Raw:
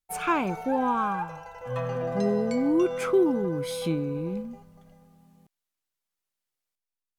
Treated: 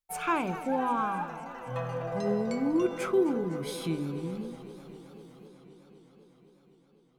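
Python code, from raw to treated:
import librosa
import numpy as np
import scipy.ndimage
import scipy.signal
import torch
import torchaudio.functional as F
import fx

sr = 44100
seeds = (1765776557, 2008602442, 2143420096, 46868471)

y = fx.hum_notches(x, sr, base_hz=50, count=10)
y = fx.echo_warbled(y, sr, ms=254, feedback_pct=79, rate_hz=2.8, cents=162, wet_db=-16.0)
y = F.gain(torch.from_numpy(y), -3.0).numpy()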